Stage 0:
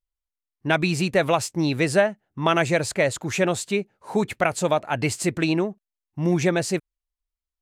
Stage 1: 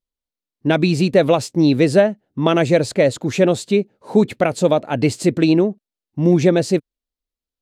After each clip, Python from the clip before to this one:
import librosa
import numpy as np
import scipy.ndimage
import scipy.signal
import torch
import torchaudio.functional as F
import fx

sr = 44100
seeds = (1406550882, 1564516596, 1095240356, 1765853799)

y = fx.graphic_eq_10(x, sr, hz=(125, 250, 500, 4000), db=(6, 12, 9, 7))
y = y * librosa.db_to_amplitude(-3.0)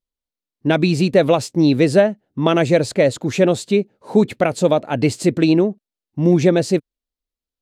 y = x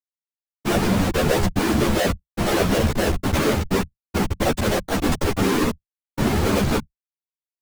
y = fx.schmitt(x, sr, flips_db=-21.5)
y = fx.whisperise(y, sr, seeds[0])
y = fx.ensemble(y, sr)
y = y * librosa.db_to_amplitude(1.5)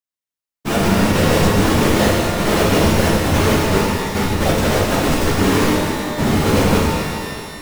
y = fx.rev_shimmer(x, sr, seeds[1], rt60_s=2.2, semitones=12, shimmer_db=-8, drr_db=-3.5)